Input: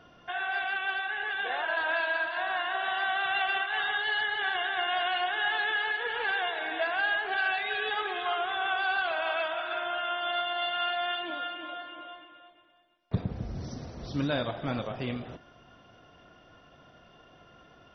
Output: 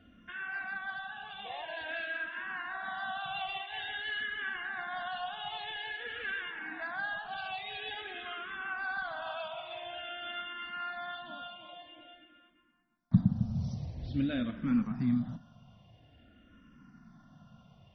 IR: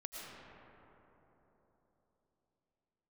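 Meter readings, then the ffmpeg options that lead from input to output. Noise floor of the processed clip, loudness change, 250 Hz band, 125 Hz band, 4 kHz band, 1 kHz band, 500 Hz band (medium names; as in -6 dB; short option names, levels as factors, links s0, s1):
-62 dBFS, -6.5 dB, +5.0 dB, +3.0 dB, -8.5 dB, -9.5 dB, -11.0 dB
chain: -filter_complex "[0:a]lowshelf=f=300:t=q:w=3:g=9,asplit=2[s0][s1];[s1]afreqshift=-0.49[s2];[s0][s2]amix=inputs=2:normalize=1,volume=0.562"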